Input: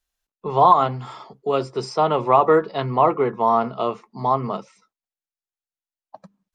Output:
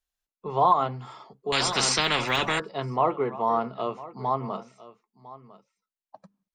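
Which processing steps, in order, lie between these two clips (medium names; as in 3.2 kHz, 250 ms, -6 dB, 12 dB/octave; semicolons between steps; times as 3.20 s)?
on a send: delay 1003 ms -18 dB; 1.52–2.60 s: on the sum: spectrum-flattening compressor 10:1; trim -6.5 dB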